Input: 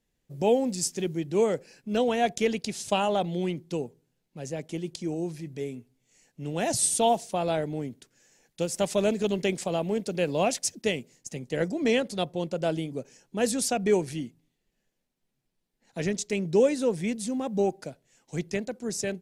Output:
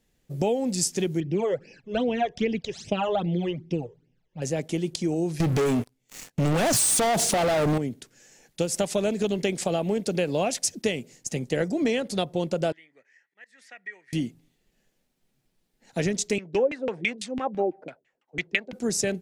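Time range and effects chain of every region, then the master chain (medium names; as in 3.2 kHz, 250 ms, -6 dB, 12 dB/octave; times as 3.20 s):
1.20–4.42 s: distance through air 170 m + phase shifter stages 12, 2.5 Hz, lowest notch 220–1400 Hz
5.40–7.78 s: compression, threshold -29 dBFS + waveshaping leveller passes 5
12.72–14.13 s: slow attack 281 ms + band-pass filter 1.9 kHz, Q 16 + three bands compressed up and down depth 40%
16.38–18.73 s: tilt EQ +4.5 dB/octave + LFO low-pass saw down 6 Hz 260–2900 Hz + three bands expanded up and down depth 70%
whole clip: compression, threshold -29 dBFS; band-stop 1 kHz, Q 20; trim +7.5 dB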